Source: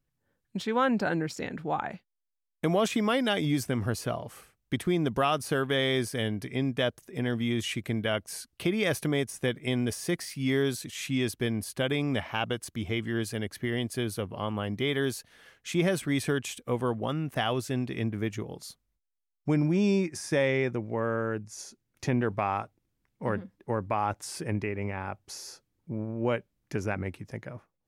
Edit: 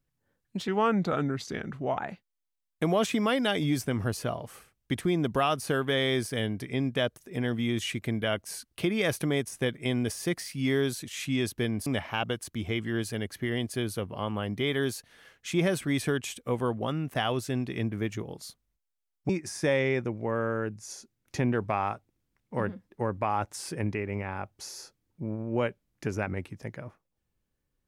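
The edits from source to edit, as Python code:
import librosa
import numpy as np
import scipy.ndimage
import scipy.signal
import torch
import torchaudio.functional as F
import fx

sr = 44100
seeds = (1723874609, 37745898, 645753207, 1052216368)

y = fx.edit(x, sr, fx.speed_span(start_s=0.68, length_s=1.12, speed=0.86),
    fx.cut(start_s=11.68, length_s=0.39),
    fx.cut(start_s=19.5, length_s=0.48), tone=tone)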